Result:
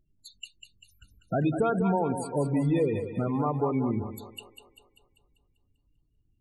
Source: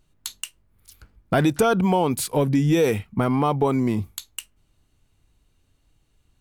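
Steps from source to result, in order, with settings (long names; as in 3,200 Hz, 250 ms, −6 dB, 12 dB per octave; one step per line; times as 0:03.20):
spectral peaks only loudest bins 16
echo with a time of its own for lows and highs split 420 Hz, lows 89 ms, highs 196 ms, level −8 dB
level −6.5 dB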